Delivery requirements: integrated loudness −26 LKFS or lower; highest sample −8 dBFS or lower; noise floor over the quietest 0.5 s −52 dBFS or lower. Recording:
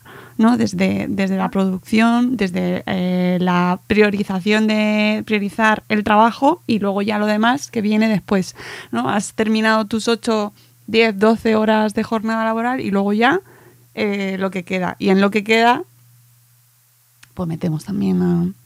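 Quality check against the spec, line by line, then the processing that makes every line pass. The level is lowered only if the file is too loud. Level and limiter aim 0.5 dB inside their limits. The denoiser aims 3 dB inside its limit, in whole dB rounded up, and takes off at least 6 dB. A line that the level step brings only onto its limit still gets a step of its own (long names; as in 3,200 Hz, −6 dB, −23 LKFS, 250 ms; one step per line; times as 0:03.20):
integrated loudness −17.5 LKFS: out of spec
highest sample −1.5 dBFS: out of spec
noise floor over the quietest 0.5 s −56 dBFS: in spec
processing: level −9 dB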